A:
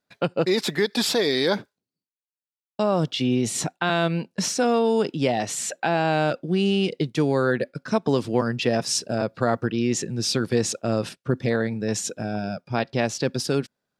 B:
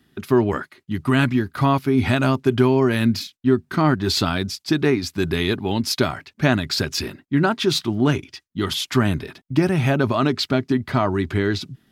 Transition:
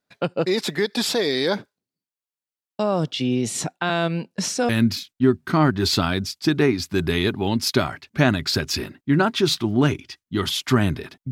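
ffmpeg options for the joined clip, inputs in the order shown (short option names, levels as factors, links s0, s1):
-filter_complex "[0:a]apad=whole_dur=11.31,atrim=end=11.31,atrim=end=4.692[s0];[1:a]atrim=start=2.928:end=9.55[s1];[s0][s1]acrossfade=d=0.004:c1=hsin:c2=hsin"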